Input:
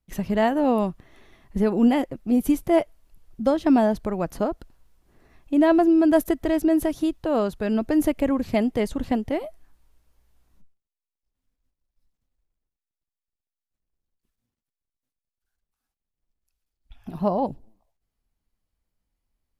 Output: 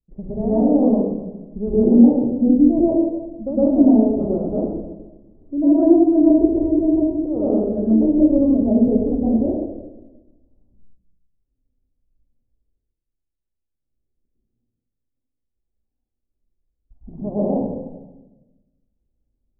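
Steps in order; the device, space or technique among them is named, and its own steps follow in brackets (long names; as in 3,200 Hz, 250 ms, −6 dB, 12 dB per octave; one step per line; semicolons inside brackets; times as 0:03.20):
next room (low-pass filter 550 Hz 24 dB per octave; convolution reverb RT60 1.1 s, pre-delay 102 ms, DRR −9.5 dB)
hum removal 64.35 Hz, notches 33
level −3.5 dB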